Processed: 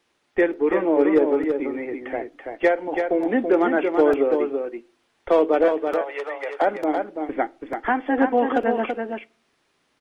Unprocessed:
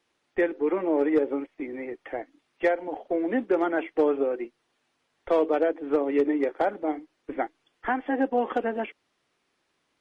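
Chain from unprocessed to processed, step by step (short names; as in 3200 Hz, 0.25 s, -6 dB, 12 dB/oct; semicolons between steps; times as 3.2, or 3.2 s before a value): 5.68–6.62 inverse Chebyshev high-pass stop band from 180 Hz, stop band 60 dB; echo 0.332 s -5.5 dB; on a send at -20.5 dB: reverb RT60 0.40 s, pre-delay 5 ms; on the sum: crackling interface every 0.90 s, samples 128, repeat, from 0.53; gain +5 dB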